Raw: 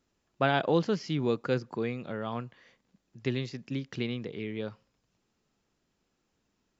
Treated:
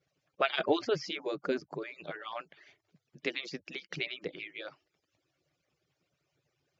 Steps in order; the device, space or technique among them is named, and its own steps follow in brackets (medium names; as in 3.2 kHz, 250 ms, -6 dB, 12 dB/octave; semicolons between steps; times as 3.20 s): harmonic-percussive separation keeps percussive; 1.20–1.95 s: peaking EQ 2.7 kHz -8.5 dB 1.8 oct; car door speaker (cabinet simulation 98–6600 Hz, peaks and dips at 140 Hz +6 dB, 220 Hz -9 dB, 580 Hz +3 dB, 960 Hz -6 dB, 2.3 kHz +4 dB); trim +3 dB